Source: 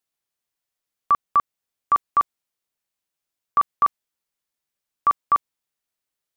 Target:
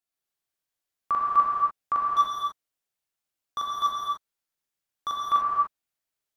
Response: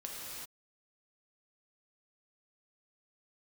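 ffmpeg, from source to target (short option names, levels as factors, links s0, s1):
-filter_complex "[0:a]asettb=1/sr,asplit=3[s0][s1][s2];[s0]atrim=end=2.064[s3];[s1]atrim=start=2.06:end=5.19,asetpts=PTS-STARTPTS,afade=t=in:d=0.004:c=qsin,afade=t=out:st=3.126:d=0.004:c=qsin,volume=8.41,asoftclip=hard,volume=0.119[s4];[s2]atrim=start=5.186[s5];[s3][s4]acrossfade=d=0.004:c1=hsin:c2=qsin[s6];[s6][s5]acrossfade=d=0.004:c1=qsin:c2=hsin[s7];[1:a]atrim=start_sample=2205,asetrate=57330,aresample=44100[s8];[s7][s8]afir=irnorm=-1:irlink=0"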